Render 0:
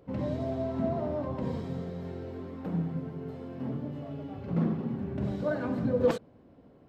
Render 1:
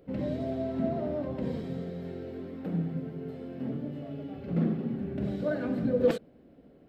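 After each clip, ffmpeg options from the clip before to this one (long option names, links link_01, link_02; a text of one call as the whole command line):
ffmpeg -i in.wav -af "equalizer=frequency=100:width_type=o:width=0.67:gain=-10,equalizer=frequency=1000:width_type=o:width=0.67:gain=-11,equalizer=frequency=6300:width_type=o:width=0.67:gain=-6,volume=2dB" out.wav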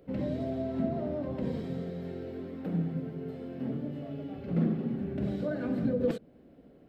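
ffmpeg -i in.wav -filter_complex "[0:a]acrossover=split=340[link_01][link_02];[link_02]acompressor=threshold=-36dB:ratio=2[link_03];[link_01][link_03]amix=inputs=2:normalize=0" out.wav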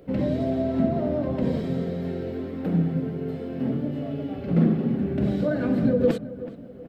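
ffmpeg -i in.wav -filter_complex "[0:a]asplit=2[link_01][link_02];[link_02]adelay=376,lowpass=frequency=1800:poles=1,volume=-14.5dB,asplit=2[link_03][link_04];[link_04]adelay=376,lowpass=frequency=1800:poles=1,volume=0.43,asplit=2[link_05][link_06];[link_06]adelay=376,lowpass=frequency=1800:poles=1,volume=0.43,asplit=2[link_07][link_08];[link_08]adelay=376,lowpass=frequency=1800:poles=1,volume=0.43[link_09];[link_01][link_03][link_05][link_07][link_09]amix=inputs=5:normalize=0,volume=8dB" out.wav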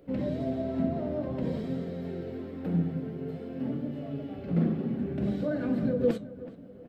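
ffmpeg -i in.wav -af "flanger=delay=3.4:depth=8:regen=75:speed=0.54:shape=sinusoidal,volume=-2dB" out.wav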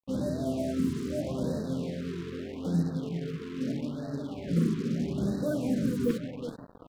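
ffmpeg -i in.wav -af "aecho=1:1:383:0.282,acrusher=bits=6:mix=0:aa=0.5,afftfilt=real='re*(1-between(b*sr/1024,650*pow(2700/650,0.5+0.5*sin(2*PI*0.79*pts/sr))/1.41,650*pow(2700/650,0.5+0.5*sin(2*PI*0.79*pts/sr))*1.41))':imag='im*(1-between(b*sr/1024,650*pow(2700/650,0.5+0.5*sin(2*PI*0.79*pts/sr))/1.41,650*pow(2700/650,0.5+0.5*sin(2*PI*0.79*pts/sr))*1.41))':win_size=1024:overlap=0.75" out.wav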